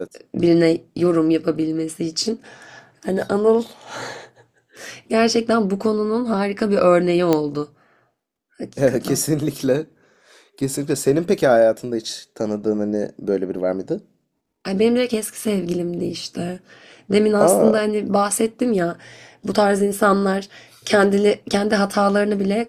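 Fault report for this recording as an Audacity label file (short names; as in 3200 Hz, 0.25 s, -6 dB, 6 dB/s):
7.330000	7.330000	pop -5 dBFS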